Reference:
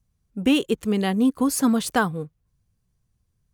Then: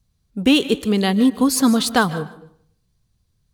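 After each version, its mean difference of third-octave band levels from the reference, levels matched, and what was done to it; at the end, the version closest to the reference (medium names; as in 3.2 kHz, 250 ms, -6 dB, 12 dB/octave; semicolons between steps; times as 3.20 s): 3.5 dB: peaking EQ 4.1 kHz +8.5 dB 0.64 oct; on a send: thinning echo 151 ms, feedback 20%, high-pass 1 kHz, level -17 dB; on the sum: algorithmic reverb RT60 0.63 s, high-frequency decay 0.55×, pre-delay 105 ms, DRR 15.5 dB; trim +4 dB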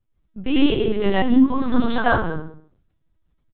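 12.5 dB: delay 186 ms -15.5 dB; plate-style reverb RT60 0.51 s, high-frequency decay 0.8×, pre-delay 80 ms, DRR -7.5 dB; LPC vocoder at 8 kHz pitch kept; trim -3 dB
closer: first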